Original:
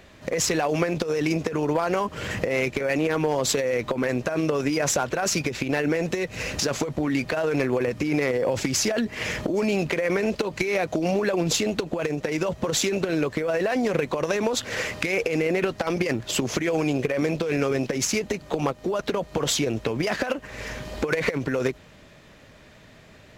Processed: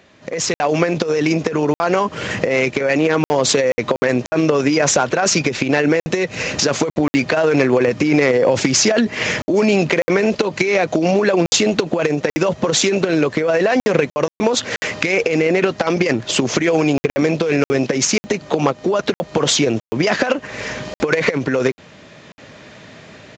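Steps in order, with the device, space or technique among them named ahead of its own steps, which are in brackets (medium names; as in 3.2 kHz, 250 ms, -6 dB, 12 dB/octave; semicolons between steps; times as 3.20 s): call with lost packets (high-pass 120 Hz 12 dB/octave; resampled via 16 kHz; level rider gain up to 11 dB; lost packets of 60 ms random)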